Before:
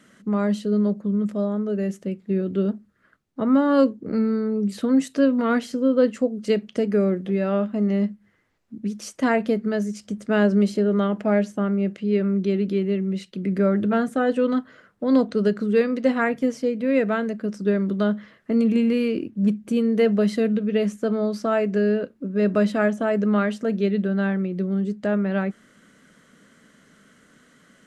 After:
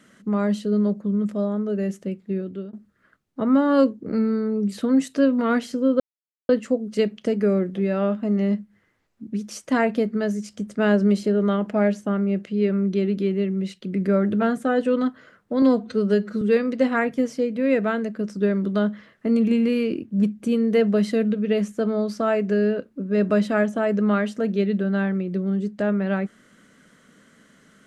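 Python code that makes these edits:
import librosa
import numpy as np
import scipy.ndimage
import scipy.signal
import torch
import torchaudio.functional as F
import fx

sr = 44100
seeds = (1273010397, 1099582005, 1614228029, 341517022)

y = fx.edit(x, sr, fx.fade_out_to(start_s=1.9, length_s=0.83, curve='qsin', floor_db=-20.5),
    fx.insert_silence(at_s=6.0, length_s=0.49),
    fx.stretch_span(start_s=15.13, length_s=0.53, factor=1.5), tone=tone)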